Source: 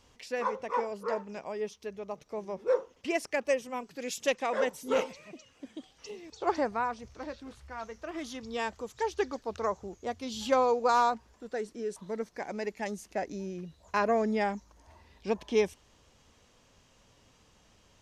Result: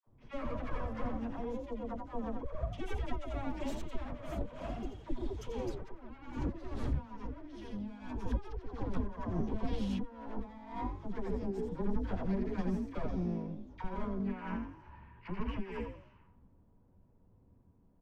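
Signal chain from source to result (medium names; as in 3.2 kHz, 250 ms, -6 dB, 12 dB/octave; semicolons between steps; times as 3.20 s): comb filter that takes the minimum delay 9.6 ms; Doppler pass-by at 6.98 s, 36 m/s, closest 15 m; time-frequency box 14.27–16.26 s, 850–3100 Hz +12 dB; frequency-shifting echo 85 ms, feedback 38%, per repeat +45 Hz, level -6 dB; compressor with a negative ratio -57 dBFS, ratio -1; peaking EQ 250 Hz +6.5 dB 0.92 oct; small resonant body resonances 970/3300 Hz, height 11 dB, ringing for 95 ms; phase dispersion lows, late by 67 ms, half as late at 770 Hz; level-controlled noise filter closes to 760 Hz, open at -56 dBFS; RIAA curve playback; trim +9 dB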